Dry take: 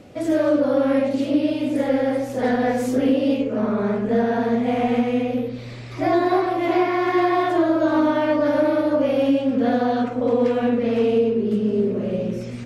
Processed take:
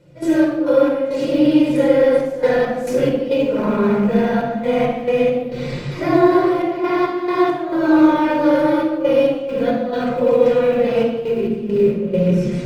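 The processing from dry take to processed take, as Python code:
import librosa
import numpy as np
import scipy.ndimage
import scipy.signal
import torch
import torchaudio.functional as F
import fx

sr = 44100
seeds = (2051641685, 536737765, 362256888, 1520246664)

p1 = fx.rattle_buzz(x, sr, strikes_db=-24.0, level_db=-31.0)
p2 = p1 + fx.echo_feedback(p1, sr, ms=172, feedback_pct=52, wet_db=-23, dry=0)
p3 = fx.quant_float(p2, sr, bits=6)
p4 = fx.peak_eq(p3, sr, hz=140.0, db=13.0, octaves=0.37)
p5 = p4 + 0.59 * np.pad(p4, (int(5.7 * sr / 1000.0), 0))[:len(p4)]
p6 = fx.rider(p5, sr, range_db=10, speed_s=0.5)
p7 = p5 + F.gain(torch.from_numpy(p6), -1.0).numpy()
p8 = fx.hum_notches(p7, sr, base_hz=60, count=4)
p9 = fx.step_gate(p8, sr, bpm=68, pattern='.x.x.xxxxx', floor_db=-12.0, edge_ms=4.5)
p10 = fx.room_shoebox(p9, sr, seeds[0], volume_m3=3200.0, walls='furnished', distance_m=4.8)
y = F.gain(torch.from_numpy(p10), -6.5).numpy()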